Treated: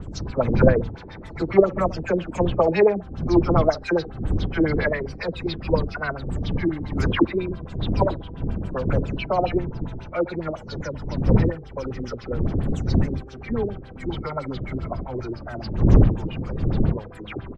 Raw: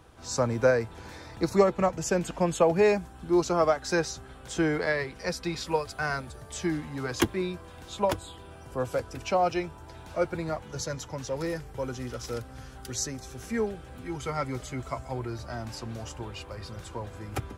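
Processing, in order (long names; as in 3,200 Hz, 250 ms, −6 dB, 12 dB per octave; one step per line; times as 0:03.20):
every frequency bin delayed by itself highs early, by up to 217 ms
wind on the microphone 140 Hz −27 dBFS
single-tap delay 74 ms −19 dB
auto-filter low-pass sine 7.3 Hz 320–4,200 Hz
level +1.5 dB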